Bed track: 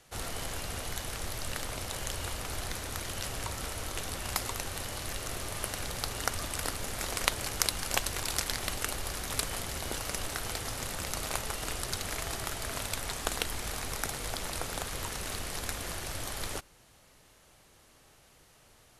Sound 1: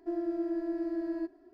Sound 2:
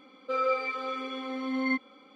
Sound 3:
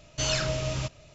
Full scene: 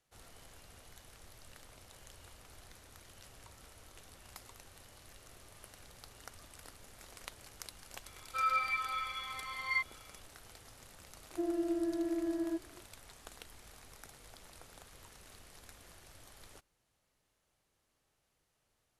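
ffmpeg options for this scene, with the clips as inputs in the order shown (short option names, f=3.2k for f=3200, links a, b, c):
-filter_complex "[0:a]volume=-19.5dB[a];[2:a]highpass=f=1k:w=0.5412,highpass=f=1k:w=1.3066,atrim=end=2.15,asetpts=PTS-STARTPTS,volume=-1dB,afade=t=in:d=0.004:c=hsin,afade=t=out:st=2.146:d=0.004:c=hsin,adelay=8050[b];[1:a]atrim=end=1.53,asetpts=PTS-STARTPTS,volume=-1.5dB,afade=t=in:d=0.004:c=hsin,afade=t=out:st=1.526:d=0.004:c=hsin,adelay=11310[c];[a][b][c]amix=inputs=3:normalize=0"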